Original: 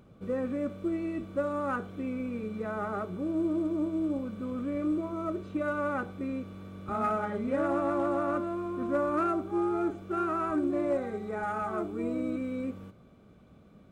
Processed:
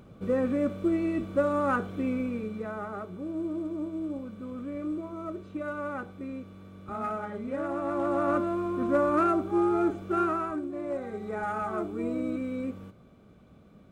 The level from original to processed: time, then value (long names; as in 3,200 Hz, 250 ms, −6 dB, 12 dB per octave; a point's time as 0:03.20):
0:02.12 +5 dB
0:02.89 −3.5 dB
0:07.75 −3.5 dB
0:08.31 +4 dB
0:10.24 +4 dB
0:10.69 −7 dB
0:11.30 +1 dB